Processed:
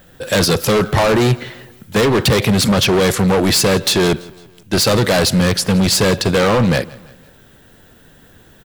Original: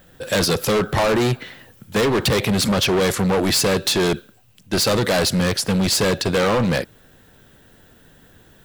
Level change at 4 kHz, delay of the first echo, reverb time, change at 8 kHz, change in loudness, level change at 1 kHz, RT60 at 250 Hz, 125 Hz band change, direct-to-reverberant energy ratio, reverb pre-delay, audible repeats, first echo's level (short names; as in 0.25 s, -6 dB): +4.0 dB, 0.167 s, none, +4.0 dB, +4.5 dB, +4.0 dB, none, +6.0 dB, none, none, 3, -22.5 dB